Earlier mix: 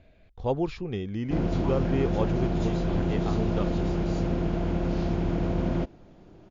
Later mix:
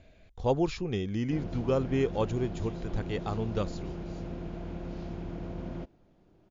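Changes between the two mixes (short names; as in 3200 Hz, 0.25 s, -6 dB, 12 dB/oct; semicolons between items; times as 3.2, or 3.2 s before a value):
speech: remove air absorption 130 m; background -11.5 dB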